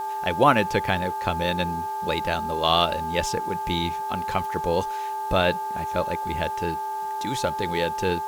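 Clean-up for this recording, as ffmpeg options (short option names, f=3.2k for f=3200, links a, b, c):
-af "bandreject=f=399.7:t=h:w=4,bandreject=f=799.4:t=h:w=4,bandreject=f=1.1991k:t=h:w=4,bandreject=f=1.5988k:t=h:w=4,bandreject=f=870:w=30,afwtdn=0.0032"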